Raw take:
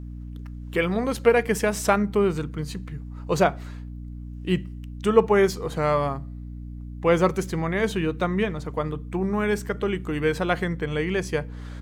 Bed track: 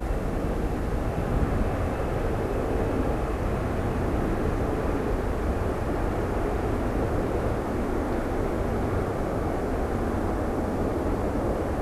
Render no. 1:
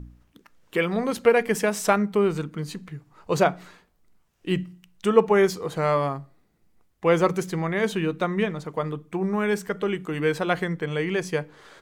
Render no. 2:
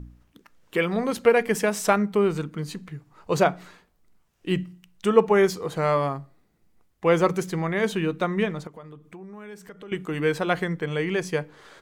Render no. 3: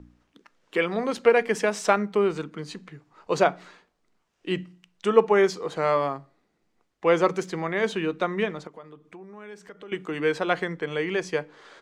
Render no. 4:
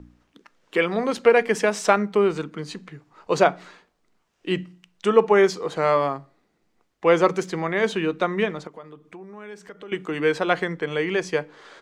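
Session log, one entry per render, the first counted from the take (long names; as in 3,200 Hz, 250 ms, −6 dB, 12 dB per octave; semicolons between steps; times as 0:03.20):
hum removal 60 Hz, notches 5
0:08.67–0:09.92: downward compressor 3 to 1, threshold −44 dBFS
three-way crossover with the lows and the highs turned down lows −12 dB, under 220 Hz, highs −20 dB, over 8,000 Hz
level +3 dB; brickwall limiter −3 dBFS, peak gain reduction 2.5 dB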